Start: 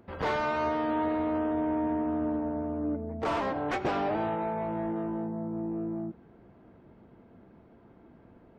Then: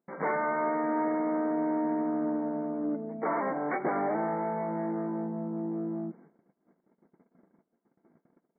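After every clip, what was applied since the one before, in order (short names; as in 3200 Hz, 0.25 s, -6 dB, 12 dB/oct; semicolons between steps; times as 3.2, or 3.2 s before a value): FFT band-pass 150–2300 Hz; gate -53 dBFS, range -27 dB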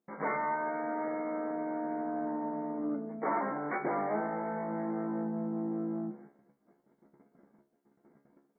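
vocal rider 0.5 s; resonator 70 Hz, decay 0.31 s, harmonics all, mix 90%; gain +6 dB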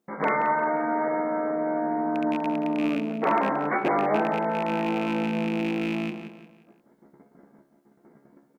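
rattling part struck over -39 dBFS, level -31 dBFS; on a send: feedback echo 0.176 s, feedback 38%, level -10 dB; on the sum: gain +8.5 dB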